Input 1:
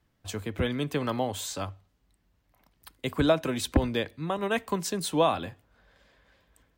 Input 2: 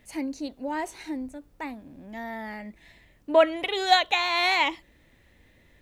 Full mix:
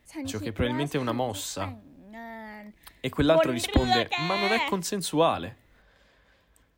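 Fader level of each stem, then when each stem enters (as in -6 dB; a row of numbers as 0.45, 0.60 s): +1.0, -5.0 dB; 0.00, 0.00 s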